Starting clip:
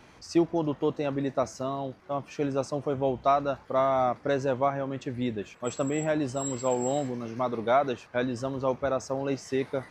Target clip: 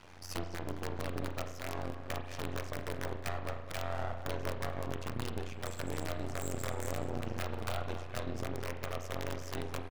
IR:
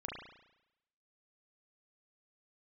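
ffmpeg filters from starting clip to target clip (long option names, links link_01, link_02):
-filter_complex "[0:a]equalizer=frequency=470:width_type=o:width=1.4:gain=3,bandreject=frequency=50:width_type=h:width=6,bandreject=frequency=100:width_type=h:width=6,bandreject=frequency=150:width_type=h:width=6,bandreject=frequency=200:width_type=h:width=6,bandreject=frequency=250:width_type=h:width=6,bandreject=frequency=300:width_type=h:width=6,bandreject=frequency=350:width_type=h:width=6,bandreject=frequency=400:width_type=h:width=6,bandreject=frequency=450:width_type=h:width=6,bandreject=frequency=500:width_type=h:width=6,acompressor=threshold=-33dB:ratio=16,aeval=exprs='(mod(26.6*val(0)+1,2)-1)/26.6':channel_layout=same,asplit=2[link_01][link_02];[link_02]adelay=212,lowpass=frequency=2700:poles=1,volume=-10.5dB,asplit=2[link_03][link_04];[link_04]adelay=212,lowpass=frequency=2700:poles=1,volume=0.51,asplit=2[link_05][link_06];[link_06]adelay=212,lowpass=frequency=2700:poles=1,volume=0.51,asplit=2[link_07][link_08];[link_08]adelay=212,lowpass=frequency=2700:poles=1,volume=0.51,asplit=2[link_09][link_10];[link_10]adelay=212,lowpass=frequency=2700:poles=1,volume=0.51,asplit=2[link_11][link_12];[link_12]adelay=212,lowpass=frequency=2700:poles=1,volume=0.51[link_13];[link_01][link_03][link_05][link_07][link_09][link_11][link_13]amix=inputs=7:normalize=0,aeval=exprs='max(val(0),0)':channel_layout=same,tremolo=f=89:d=1,asplit=2[link_14][link_15];[1:a]atrim=start_sample=2205[link_16];[link_15][link_16]afir=irnorm=-1:irlink=0,volume=-2.5dB[link_17];[link_14][link_17]amix=inputs=2:normalize=0,volume=2.5dB"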